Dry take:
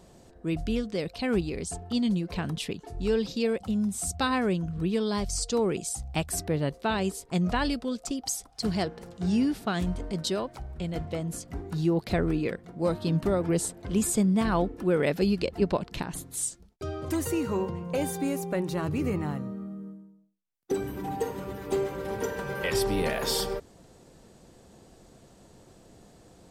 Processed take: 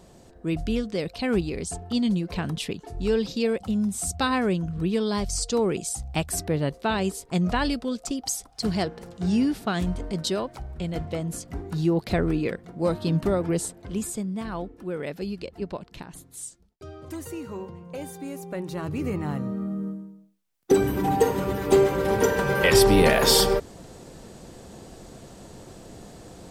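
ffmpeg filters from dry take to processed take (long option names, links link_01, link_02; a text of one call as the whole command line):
ffmpeg -i in.wav -af "volume=19.5dB,afade=type=out:start_time=13.27:duration=0.95:silence=0.334965,afade=type=in:start_time=18.24:duration=0.99:silence=0.398107,afade=type=in:start_time=19.23:duration=0.61:silence=0.354813" out.wav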